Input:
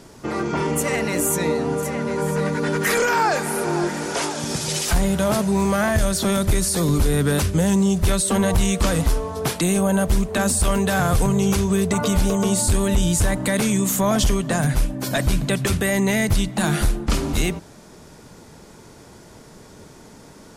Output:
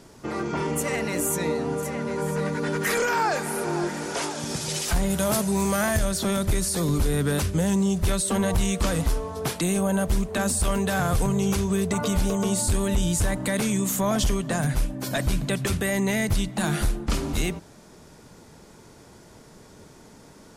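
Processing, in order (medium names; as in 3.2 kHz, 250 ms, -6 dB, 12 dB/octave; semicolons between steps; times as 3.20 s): 5.09–5.97 s: treble shelf 6.8 kHz -> 4.8 kHz +11 dB; trim -4.5 dB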